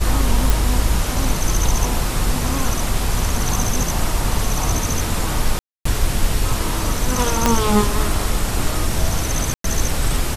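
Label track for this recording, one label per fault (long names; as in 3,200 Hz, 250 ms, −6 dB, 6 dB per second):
0.500000	0.500000	click
3.640000	3.640000	drop-out 2.5 ms
5.590000	5.850000	drop-out 264 ms
7.460000	7.460000	click 0 dBFS
9.540000	9.640000	drop-out 103 ms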